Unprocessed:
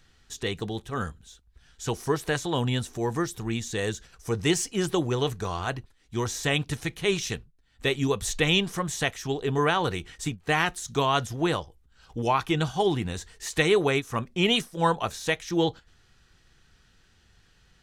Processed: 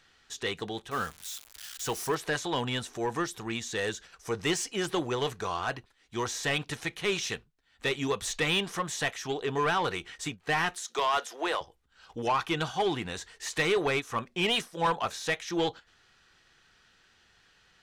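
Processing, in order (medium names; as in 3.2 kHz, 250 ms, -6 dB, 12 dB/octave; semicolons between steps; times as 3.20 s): 0.91–2.15 s: zero-crossing glitches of -29.5 dBFS; 10.77–11.61 s: high-pass 380 Hz 24 dB/octave; overdrive pedal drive 18 dB, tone 4 kHz, clips at -8 dBFS; trim -9 dB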